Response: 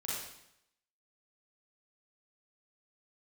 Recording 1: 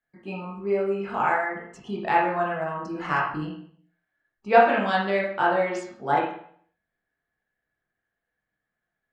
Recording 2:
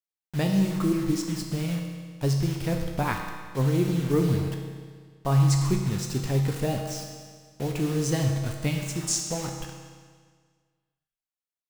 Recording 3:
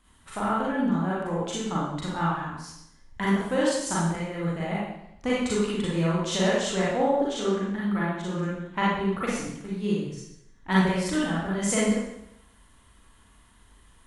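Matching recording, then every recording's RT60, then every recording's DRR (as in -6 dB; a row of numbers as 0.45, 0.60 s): 3; 0.60, 1.7, 0.80 s; -4.5, 2.0, -7.5 dB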